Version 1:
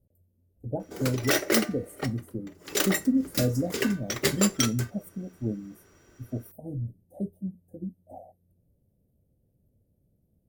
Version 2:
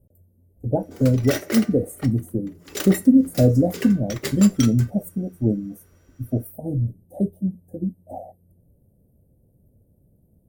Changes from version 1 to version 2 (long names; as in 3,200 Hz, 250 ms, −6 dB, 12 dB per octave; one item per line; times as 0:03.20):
speech +10.0 dB
background −3.5 dB